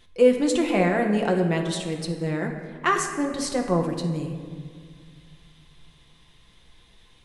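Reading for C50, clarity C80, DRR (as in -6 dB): 6.0 dB, 7.5 dB, 2.0 dB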